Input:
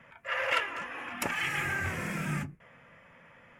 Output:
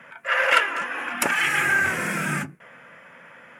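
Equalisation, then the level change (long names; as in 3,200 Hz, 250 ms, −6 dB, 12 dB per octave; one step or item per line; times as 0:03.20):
high-pass filter 200 Hz 12 dB per octave
parametric band 1,500 Hz +7.5 dB 0.22 octaves
parametric band 9,600 Hz +5.5 dB 0.63 octaves
+8.5 dB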